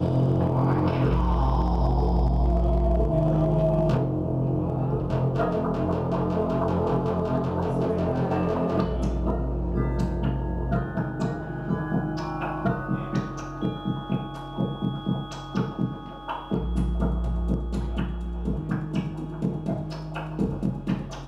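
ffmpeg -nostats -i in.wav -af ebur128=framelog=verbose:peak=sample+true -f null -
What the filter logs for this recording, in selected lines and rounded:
Integrated loudness:
  I:         -26.5 LUFS
  Threshold: -36.5 LUFS
Loudness range:
  LRA:         6.2 LU
  Threshold: -46.7 LUFS
  LRA low:   -29.8 LUFS
  LRA high:  -23.6 LUFS
Sample peak:
  Peak:      -12.3 dBFS
True peak:
  Peak:      -12.3 dBFS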